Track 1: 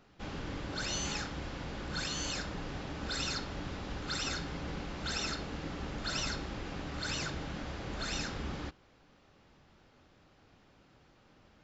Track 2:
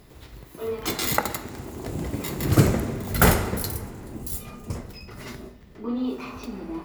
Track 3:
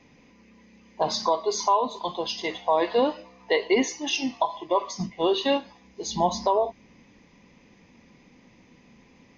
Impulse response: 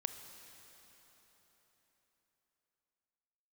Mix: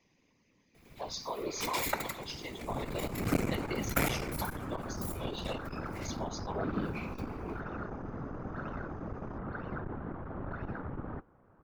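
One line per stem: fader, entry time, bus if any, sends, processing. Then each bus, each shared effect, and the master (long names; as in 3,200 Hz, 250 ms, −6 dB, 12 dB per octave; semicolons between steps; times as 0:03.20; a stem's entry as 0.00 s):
+2.0 dB, 2.50 s, no send, Chebyshev low-pass filter 1,300 Hz, order 3
−9.5 dB, 0.75 s, no send, parametric band 2,300 Hz +12.5 dB 0.22 octaves
−16.0 dB, 0.00 s, no send, high-shelf EQ 4,200 Hz +10 dB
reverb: not used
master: random phases in short frames; saturating transformer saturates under 500 Hz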